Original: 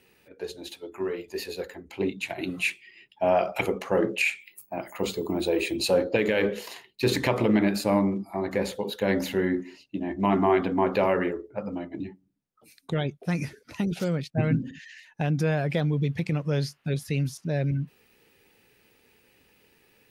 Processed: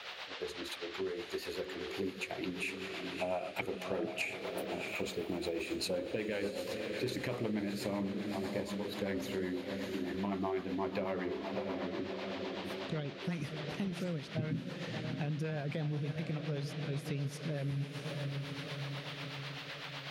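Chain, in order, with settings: diffused feedback echo 0.669 s, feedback 52%, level -8.5 dB; band noise 500–4000 Hz -43 dBFS; rotary speaker horn 8 Hz; compressor 3:1, threshold -37 dBFS, peak gain reduction 13.5 dB

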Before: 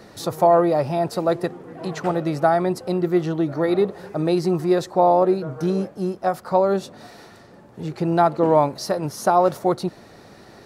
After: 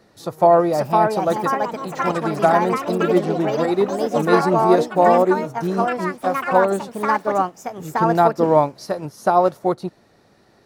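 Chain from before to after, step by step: echoes that change speed 0.596 s, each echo +4 st, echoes 3; upward expander 1.5:1, over -37 dBFS; gain +2.5 dB

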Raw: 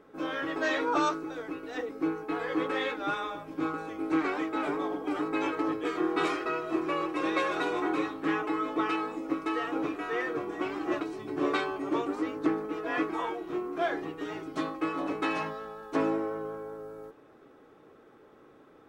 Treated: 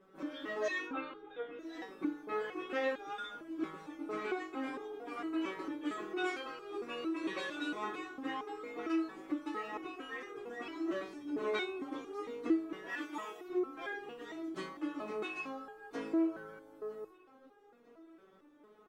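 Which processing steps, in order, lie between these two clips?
0.86–1.59 elliptic low-pass 3600 Hz; 12.89–13.48 tilt +2.5 dB/oct; feedback echo 0.952 s, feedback 46%, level -24 dB; dynamic EQ 830 Hz, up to -4 dB, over -35 dBFS, Q 1; stepped resonator 4.4 Hz 190–410 Hz; gain +7 dB

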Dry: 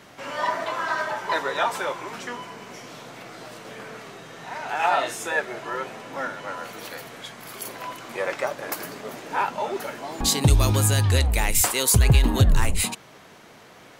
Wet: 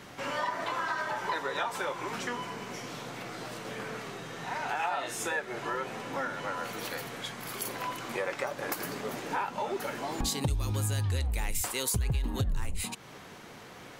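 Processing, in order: low shelf 160 Hz +4.5 dB; notch 640 Hz, Q 13; compressor 4:1, threshold -30 dBFS, peak gain reduction 17.5 dB

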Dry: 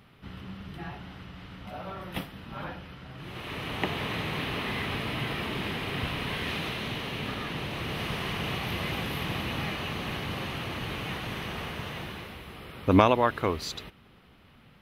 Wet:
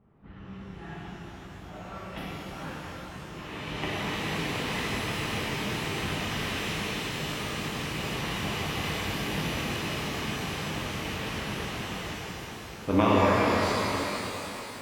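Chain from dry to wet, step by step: low-pass opened by the level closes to 740 Hz, open at -29 dBFS; shimmer reverb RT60 3.8 s, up +12 st, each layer -8 dB, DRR -6.5 dB; gain -7 dB

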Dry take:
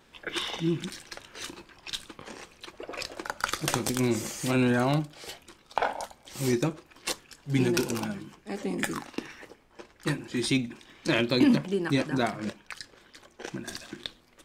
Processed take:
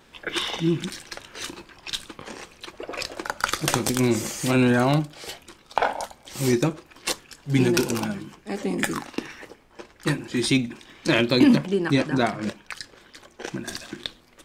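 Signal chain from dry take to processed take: 11.66–12.43 high shelf 11000 Hz -9.5 dB; gain +5 dB

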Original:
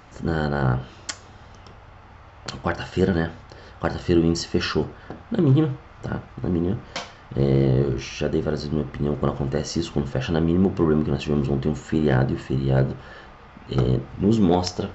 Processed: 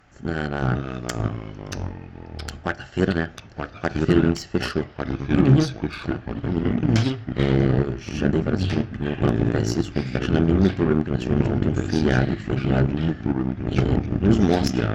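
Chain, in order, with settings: echoes that change speed 0.424 s, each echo -3 st, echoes 3; added harmonics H 3 -27 dB, 7 -23 dB, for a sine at -6 dBFS; thirty-one-band EQ 500 Hz -5 dB, 1000 Hz -9 dB, 1600 Hz +4 dB, 4000 Hz -4 dB; gain +1.5 dB

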